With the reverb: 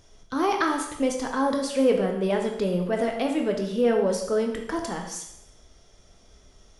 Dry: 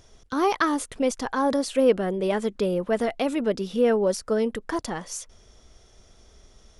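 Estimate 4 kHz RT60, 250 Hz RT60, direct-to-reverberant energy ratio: 0.75 s, 0.80 s, 2.0 dB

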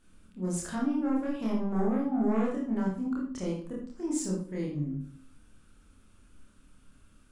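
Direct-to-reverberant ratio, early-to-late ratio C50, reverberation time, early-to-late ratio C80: −4.0 dB, 3.0 dB, 0.50 s, 7.0 dB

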